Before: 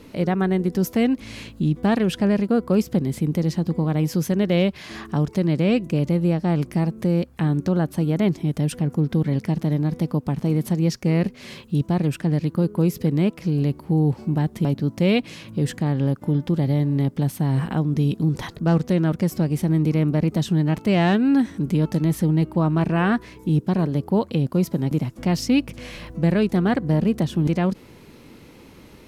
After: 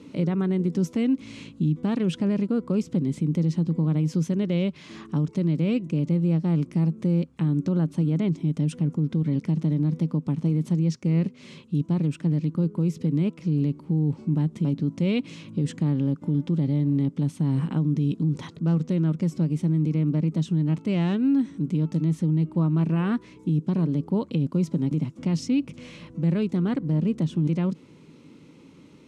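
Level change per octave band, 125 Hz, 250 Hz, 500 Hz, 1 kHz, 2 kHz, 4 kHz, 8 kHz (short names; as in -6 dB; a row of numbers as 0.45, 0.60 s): -2.0 dB, -3.0 dB, -7.5 dB, -11.5 dB, -10.5 dB, -8.0 dB, n/a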